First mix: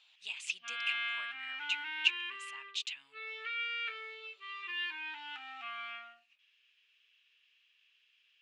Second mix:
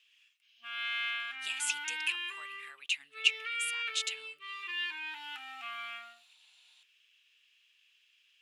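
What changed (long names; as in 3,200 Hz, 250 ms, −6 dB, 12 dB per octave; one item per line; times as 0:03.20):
speech: entry +1.20 s
master: remove high-frequency loss of the air 130 metres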